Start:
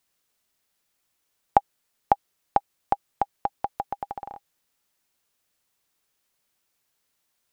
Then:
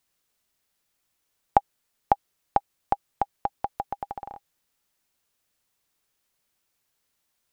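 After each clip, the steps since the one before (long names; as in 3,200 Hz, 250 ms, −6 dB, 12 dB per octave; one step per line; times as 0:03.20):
low-shelf EQ 120 Hz +4 dB
level −1 dB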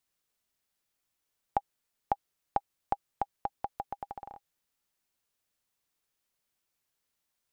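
brickwall limiter −6.5 dBFS, peak gain reduction 4.5 dB
level −6.5 dB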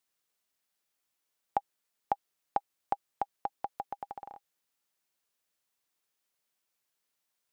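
low-shelf EQ 140 Hz −12 dB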